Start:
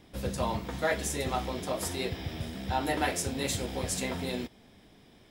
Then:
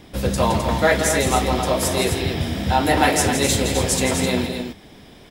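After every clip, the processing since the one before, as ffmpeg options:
ffmpeg -i in.wav -filter_complex "[0:a]acontrast=84,asplit=2[link_01][link_02];[link_02]aecho=0:1:166.2|259.5:0.398|0.447[link_03];[link_01][link_03]amix=inputs=2:normalize=0,volume=4.5dB" out.wav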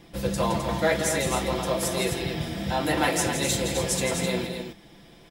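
ffmpeg -i in.wav -af "aecho=1:1:5.9:0.56,volume=-7dB" out.wav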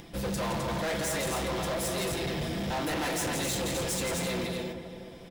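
ffmpeg -i in.wav -filter_complex "[0:a]asplit=2[link_01][link_02];[link_02]adelay=367,lowpass=frequency=1500:poles=1,volume=-12dB,asplit=2[link_03][link_04];[link_04]adelay=367,lowpass=frequency=1500:poles=1,volume=0.49,asplit=2[link_05][link_06];[link_06]adelay=367,lowpass=frequency=1500:poles=1,volume=0.49,asplit=2[link_07][link_08];[link_08]adelay=367,lowpass=frequency=1500:poles=1,volume=0.49,asplit=2[link_09][link_10];[link_10]adelay=367,lowpass=frequency=1500:poles=1,volume=0.49[link_11];[link_01][link_03][link_05][link_07][link_09][link_11]amix=inputs=6:normalize=0,acompressor=mode=upward:threshold=-44dB:ratio=2.5,volume=29dB,asoftclip=hard,volume=-29dB" out.wav

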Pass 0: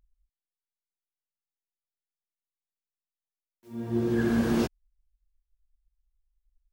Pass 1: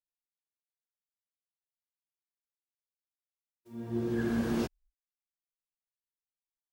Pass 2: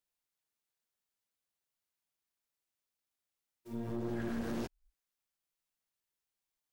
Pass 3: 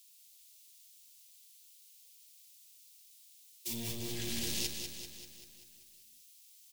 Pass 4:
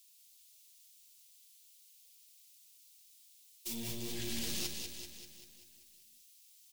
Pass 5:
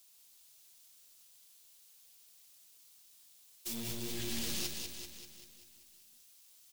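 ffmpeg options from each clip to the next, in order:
ffmpeg -i in.wav -af "agate=range=-41dB:threshold=-57dB:ratio=16:detection=peak,volume=-5.5dB" out.wav
ffmpeg -i in.wav -af "acompressor=threshold=-43dB:ratio=3,aeval=exprs='(tanh(112*val(0)+0.65)-tanh(0.65))/112':channel_layout=same,volume=9dB" out.wav
ffmpeg -i in.wav -filter_complex "[0:a]acrossover=split=200[link_01][link_02];[link_02]alimiter=level_in=17dB:limit=-24dB:level=0:latency=1:release=110,volume=-17dB[link_03];[link_01][link_03]amix=inputs=2:normalize=0,aexciter=amount=15.8:drive=6.9:freq=2300,aecho=1:1:194|388|582|776|970|1164|1358|1552:0.473|0.274|0.159|0.0923|0.0535|0.0311|0.018|0.0104" out.wav
ffmpeg -i in.wav -af "flanger=delay=3:depth=2.6:regen=-50:speed=1.4:shape=sinusoidal,aeval=exprs='0.0562*(cos(1*acos(clip(val(0)/0.0562,-1,1)))-cos(1*PI/2))+0.0251*(cos(2*acos(clip(val(0)/0.0562,-1,1)))-cos(2*PI/2))+0.00398*(cos(4*acos(clip(val(0)/0.0562,-1,1)))-cos(4*PI/2))+0.00447*(cos(6*acos(clip(val(0)/0.0562,-1,1)))-cos(6*PI/2))+0.00562*(cos(8*acos(clip(val(0)/0.0562,-1,1)))-cos(8*PI/2))':channel_layout=same,volume=2dB" out.wav
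ffmpeg -i in.wav -af "acrusher=bits=2:mode=log:mix=0:aa=0.000001" out.wav

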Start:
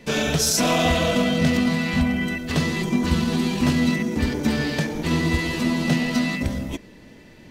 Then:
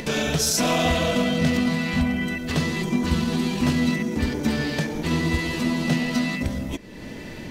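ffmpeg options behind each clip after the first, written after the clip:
ffmpeg -i in.wav -af "acompressor=mode=upward:threshold=-22dB:ratio=2.5,volume=-1.5dB" out.wav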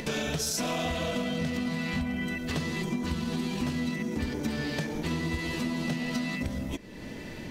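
ffmpeg -i in.wav -af "acompressor=threshold=-23dB:ratio=6,volume=-4dB" out.wav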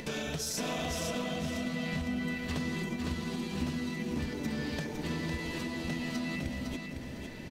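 ffmpeg -i in.wav -af "aecho=1:1:506|1012|1518|2024:0.562|0.169|0.0506|0.0152,volume=-5dB" out.wav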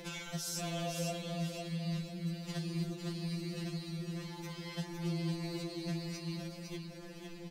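ffmpeg -i in.wav -af "afftfilt=real='re*2.83*eq(mod(b,8),0)':imag='im*2.83*eq(mod(b,8),0)':win_size=2048:overlap=0.75,volume=-1dB" out.wav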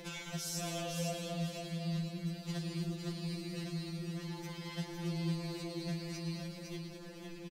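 ffmpeg -i in.wav -af "aecho=1:1:110.8|212.8:0.251|0.355,volume=-1dB" out.wav

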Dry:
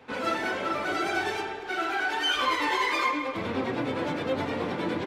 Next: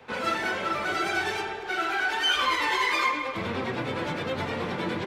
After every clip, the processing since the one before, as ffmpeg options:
ffmpeg -i in.wav -filter_complex "[0:a]equalizer=frequency=280:width=6.3:gain=-11,acrossover=split=370|900|2100[link_01][link_02][link_03][link_04];[link_02]alimiter=level_in=10dB:limit=-24dB:level=0:latency=1:release=322,volume=-10dB[link_05];[link_01][link_05][link_03][link_04]amix=inputs=4:normalize=0,volume=2.5dB" out.wav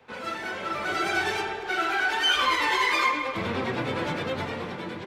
ffmpeg -i in.wav -af "dynaudnorm=framelen=230:gausssize=7:maxgain=8dB,volume=-6dB" out.wav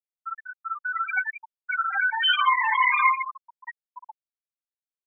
ffmpeg -i in.wav -af "equalizer=frequency=500:width_type=o:width=1:gain=-10,equalizer=frequency=1000:width_type=o:width=1:gain=10,equalizer=frequency=2000:width_type=o:width=1:gain=7,equalizer=frequency=4000:width_type=o:width=1:gain=5,afftfilt=real='re*gte(hypot(re,im),0.501)':imag='im*gte(hypot(re,im),0.501)':win_size=1024:overlap=0.75,volume=-4.5dB" out.wav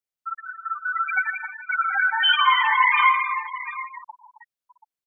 ffmpeg -i in.wav -af "aecho=1:1:118|164|268|313|732:0.141|0.237|0.251|0.15|0.178,volume=2.5dB" out.wav

